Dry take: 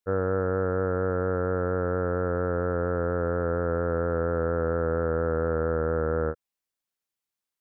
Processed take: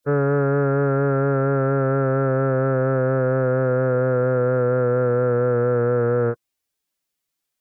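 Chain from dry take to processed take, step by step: peaking EQ 1.1 kHz -3.5 dB 1.4 oct; in parallel at -2 dB: peak limiter -27 dBFS, peak gain reduction 10 dB; on the sum: formant-preserving pitch shift +7 st; trim +5.5 dB

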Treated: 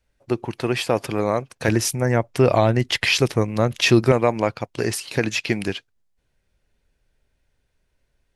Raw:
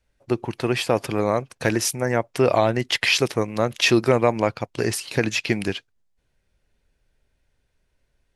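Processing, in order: 1.68–4.12 s: bass shelf 160 Hz +11 dB

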